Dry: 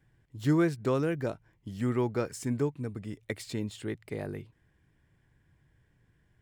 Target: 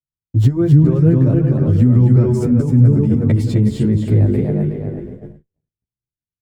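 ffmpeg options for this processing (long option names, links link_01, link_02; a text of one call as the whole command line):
ffmpeg -i in.wav -filter_complex "[0:a]asplit=2[link_01][link_02];[link_02]adelay=365,lowpass=frequency=2400:poles=1,volume=-10.5dB,asplit=2[link_03][link_04];[link_04]adelay=365,lowpass=frequency=2400:poles=1,volume=0.37,asplit=2[link_05][link_06];[link_06]adelay=365,lowpass=frequency=2400:poles=1,volume=0.37,asplit=2[link_07][link_08];[link_08]adelay=365,lowpass=frequency=2400:poles=1,volume=0.37[link_09];[link_03][link_05][link_07][link_09]amix=inputs=4:normalize=0[link_10];[link_01][link_10]amix=inputs=2:normalize=0,acrossover=split=200[link_11][link_12];[link_12]acompressor=threshold=-44dB:ratio=3[link_13];[link_11][link_13]amix=inputs=2:normalize=0,asplit=2[link_14][link_15];[link_15]aecho=0:1:260|520|780:0.631|0.12|0.0228[link_16];[link_14][link_16]amix=inputs=2:normalize=0,agate=range=-58dB:threshold=-55dB:ratio=16:detection=peak,tiltshelf=frequency=640:gain=9.5,alimiter=level_in=23dB:limit=-1dB:release=50:level=0:latency=1,asplit=2[link_17][link_18];[link_18]adelay=11,afreqshift=1.3[link_19];[link_17][link_19]amix=inputs=2:normalize=1,volume=-1dB" out.wav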